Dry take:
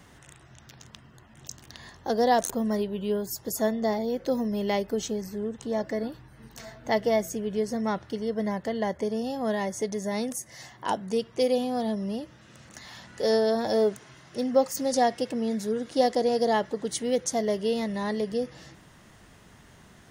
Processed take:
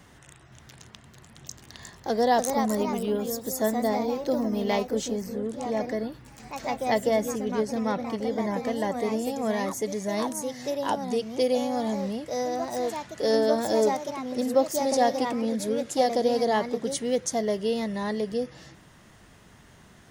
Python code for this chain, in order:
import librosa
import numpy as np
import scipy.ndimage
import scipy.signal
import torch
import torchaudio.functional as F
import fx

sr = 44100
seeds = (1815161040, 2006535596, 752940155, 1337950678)

y = fx.echo_pitch(x, sr, ms=521, semitones=2, count=2, db_per_echo=-6.0)